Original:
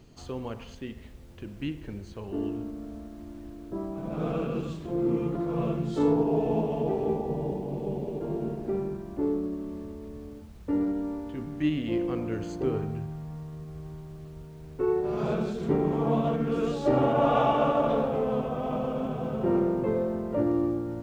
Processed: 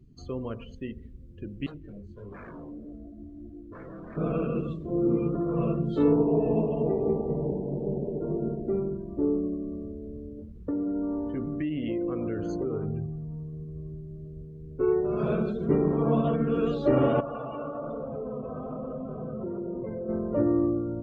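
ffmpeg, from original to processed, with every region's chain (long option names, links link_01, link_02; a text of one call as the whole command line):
ffmpeg -i in.wav -filter_complex "[0:a]asettb=1/sr,asplit=3[link_01][link_02][link_03];[link_01]atrim=end=1.664[link_04];[link_02]atrim=start=1.66:end=4.17,asetpts=PTS-STARTPTS,afade=type=in:duration=0.004:curve=qsin,afade=type=out:start_time=2.506:duration=0.004:curve=qsin,aeval=exprs='0.0168*(abs(mod(val(0)/0.0168+3,4)-2)-1)':channel_layout=same,flanger=delay=19.5:depth=5.4:speed=1.5[link_05];[link_03]atrim=start=4.166[link_06];[link_04][link_05]acrossfade=duration=0.004:curve1=hsin:curve2=qsin[link_07];[link_07][link_06]acrossfade=duration=0.004:curve1=qsin:curve2=hsin,asettb=1/sr,asplit=3[link_08][link_09][link_10];[link_08]atrim=end=10.384[link_11];[link_09]atrim=start=10.38:end=12.85,asetpts=PTS-STARTPTS,afade=type=in:duration=0.004:curve=qsin,afade=type=out:start_time=2.466:duration=0.004:curve=qsin,acompressor=threshold=-31dB:ratio=12:attack=3.2:release=140:knee=1:detection=peak,equalizer=frequency=680:width=0.32:gain=5[link_12];[link_10]atrim=start=12.846[link_13];[link_11][link_12]acrossfade=duration=0.004:curve1=hsin:curve2=qsin[link_14];[link_14][link_13]acrossfade=duration=0.004:curve1=qsin:curve2=hsin,asettb=1/sr,asplit=3[link_15][link_16][link_17];[link_15]atrim=end=17.204[link_18];[link_16]atrim=start=17.2:end=20.09,asetpts=PTS-STARTPTS,afade=type=in:duration=0.004:curve=qsin,afade=type=out:start_time=2.886:duration=0.004:curve=qsin,lowpass=4100,flanger=delay=1.1:depth=9.9:regen=-44:speed=1.1:shape=sinusoidal,acompressor=threshold=-32dB:ratio=5:attack=3.2:release=140:knee=1:detection=peak[link_19];[link_17]atrim=start=20.086[link_20];[link_18][link_19]acrossfade=duration=0.004:curve1=hsin:curve2=qsin[link_21];[link_21][link_20]acrossfade=duration=0.004:curve1=qsin:curve2=hsin,equalizer=frequency=820:width=4.5:gain=-10,afftdn=noise_reduction=23:noise_floor=-46,volume=2dB" out.wav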